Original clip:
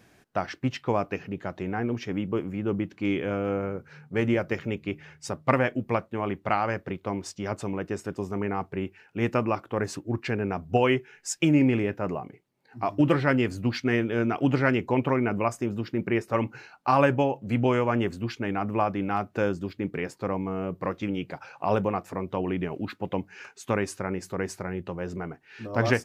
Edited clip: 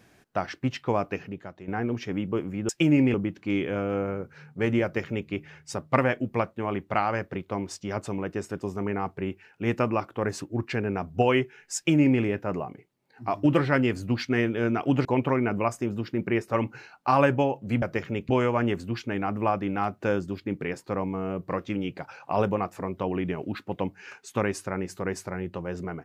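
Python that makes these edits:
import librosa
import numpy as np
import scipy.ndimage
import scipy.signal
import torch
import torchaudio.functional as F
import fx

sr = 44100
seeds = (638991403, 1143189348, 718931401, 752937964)

y = fx.edit(x, sr, fx.fade_out_to(start_s=1.22, length_s=0.46, curve='qua', floor_db=-11.0),
    fx.duplicate(start_s=4.38, length_s=0.47, to_s=17.62),
    fx.duplicate(start_s=11.31, length_s=0.45, to_s=2.69),
    fx.cut(start_s=14.6, length_s=0.25), tone=tone)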